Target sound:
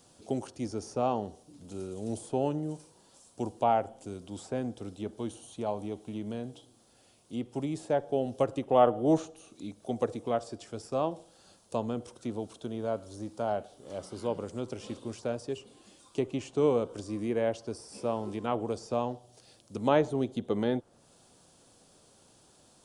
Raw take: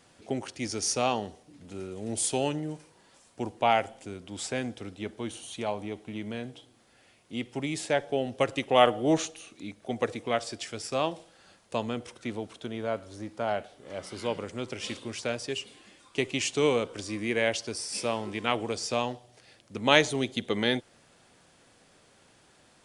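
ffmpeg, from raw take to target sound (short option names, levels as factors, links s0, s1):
-filter_complex "[0:a]highshelf=f=5600:g=5.5,acrossover=split=2000[s0][s1];[s1]acompressor=threshold=0.00355:ratio=6[s2];[s0][s2]amix=inputs=2:normalize=0,equalizer=f=2000:t=o:w=0.99:g=-13"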